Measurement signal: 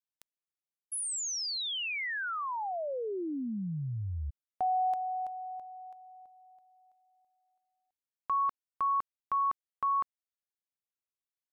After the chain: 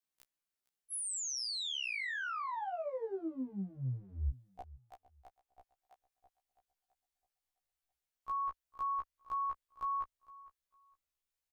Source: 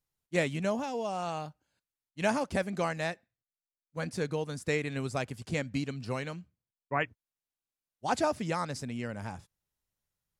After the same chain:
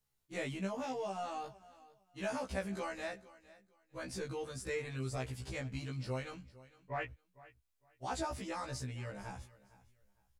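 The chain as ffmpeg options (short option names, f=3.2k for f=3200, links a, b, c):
-filter_complex "[0:a]asubboost=boost=9:cutoff=59,acompressor=threshold=-45dB:ratio=2:attack=0.18:release=32:detection=peak,asplit=2[a][b];[b]aecho=0:1:457|914:0.106|0.0244[c];[a][c]amix=inputs=2:normalize=0,afftfilt=real='re*1.73*eq(mod(b,3),0)':imag='im*1.73*eq(mod(b,3),0)':win_size=2048:overlap=0.75,volume=5dB"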